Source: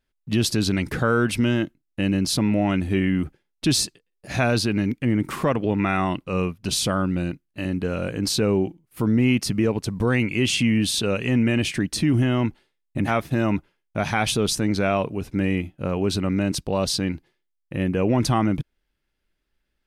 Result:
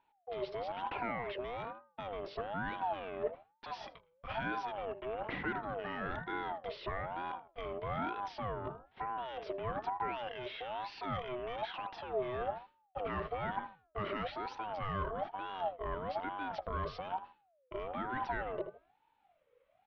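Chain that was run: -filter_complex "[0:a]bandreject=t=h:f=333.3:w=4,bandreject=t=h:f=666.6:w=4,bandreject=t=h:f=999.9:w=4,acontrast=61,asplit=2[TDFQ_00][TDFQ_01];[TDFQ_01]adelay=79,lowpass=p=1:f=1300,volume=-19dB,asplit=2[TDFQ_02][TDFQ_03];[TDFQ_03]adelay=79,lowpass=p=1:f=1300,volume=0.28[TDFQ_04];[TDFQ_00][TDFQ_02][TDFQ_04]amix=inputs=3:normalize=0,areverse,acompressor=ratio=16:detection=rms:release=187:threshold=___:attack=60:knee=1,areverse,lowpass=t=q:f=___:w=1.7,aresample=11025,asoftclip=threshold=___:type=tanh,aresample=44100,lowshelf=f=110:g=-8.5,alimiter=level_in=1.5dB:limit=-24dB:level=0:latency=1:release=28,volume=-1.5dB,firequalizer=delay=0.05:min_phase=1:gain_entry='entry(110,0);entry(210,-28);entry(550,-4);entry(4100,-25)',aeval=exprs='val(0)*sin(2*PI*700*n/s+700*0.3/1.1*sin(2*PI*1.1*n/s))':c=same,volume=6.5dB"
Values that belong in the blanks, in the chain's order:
-25dB, 3000, -20dB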